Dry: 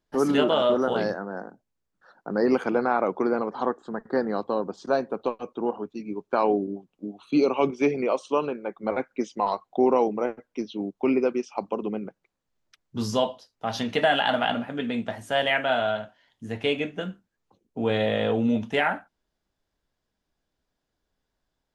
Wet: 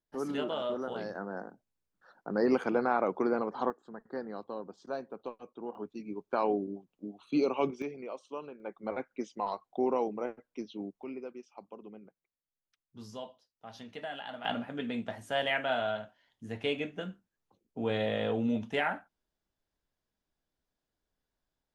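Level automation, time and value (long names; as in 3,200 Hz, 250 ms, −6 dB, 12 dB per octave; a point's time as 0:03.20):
−12.5 dB
from 0:01.15 −5 dB
from 0:03.70 −13.5 dB
from 0:05.75 −7 dB
from 0:07.82 −16.5 dB
from 0:08.60 −9 dB
from 0:11.03 −19 dB
from 0:14.45 −7 dB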